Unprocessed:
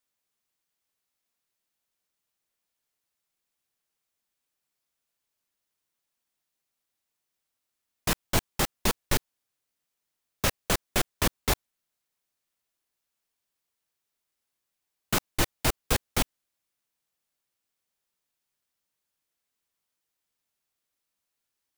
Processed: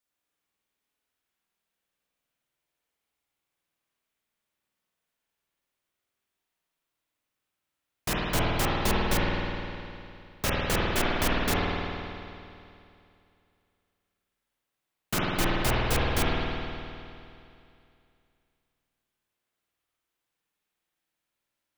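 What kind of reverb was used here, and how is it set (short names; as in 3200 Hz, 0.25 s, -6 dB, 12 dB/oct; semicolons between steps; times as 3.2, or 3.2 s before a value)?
spring tank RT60 2.6 s, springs 51 ms, chirp 65 ms, DRR -6 dB; gain -3.5 dB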